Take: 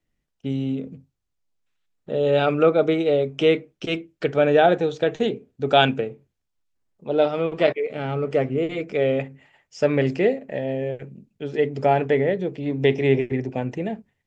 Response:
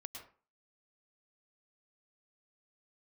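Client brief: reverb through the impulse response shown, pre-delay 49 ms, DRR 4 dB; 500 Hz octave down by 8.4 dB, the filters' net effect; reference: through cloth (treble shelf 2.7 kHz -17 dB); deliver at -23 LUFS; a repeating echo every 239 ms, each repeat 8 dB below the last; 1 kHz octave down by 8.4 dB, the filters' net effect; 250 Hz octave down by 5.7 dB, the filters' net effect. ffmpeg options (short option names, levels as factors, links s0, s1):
-filter_complex "[0:a]equalizer=f=250:t=o:g=-4.5,equalizer=f=500:t=o:g=-6.5,equalizer=f=1000:t=o:g=-6.5,aecho=1:1:239|478|717|956|1195:0.398|0.159|0.0637|0.0255|0.0102,asplit=2[s0][s1];[1:a]atrim=start_sample=2205,adelay=49[s2];[s1][s2]afir=irnorm=-1:irlink=0,volume=1[s3];[s0][s3]amix=inputs=2:normalize=0,highshelf=f=2700:g=-17,volume=1.68"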